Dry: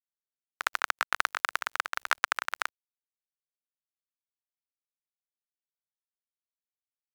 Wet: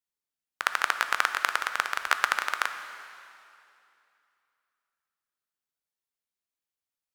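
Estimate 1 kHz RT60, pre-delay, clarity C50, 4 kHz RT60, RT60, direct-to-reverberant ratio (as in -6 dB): 2.6 s, 5 ms, 9.0 dB, 2.5 s, 2.7 s, 8.0 dB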